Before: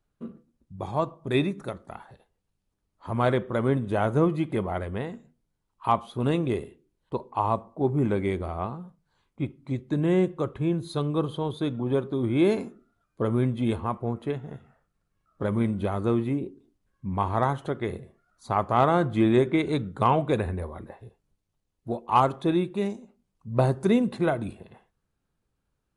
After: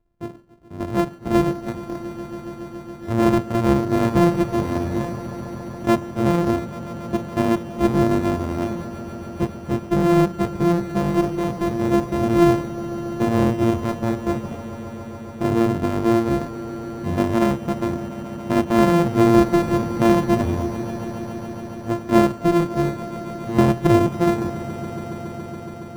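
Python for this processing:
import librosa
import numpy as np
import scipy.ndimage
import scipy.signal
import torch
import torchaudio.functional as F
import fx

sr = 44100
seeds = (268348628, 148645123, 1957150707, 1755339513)

y = np.r_[np.sort(x[:len(x) // 128 * 128].reshape(-1, 128), axis=1).ravel(), x[len(x) // 128 * 128:]]
y = fx.tilt_shelf(y, sr, db=8.0, hz=1500.0)
y = fx.echo_swell(y, sr, ms=140, loudest=5, wet_db=-17.0)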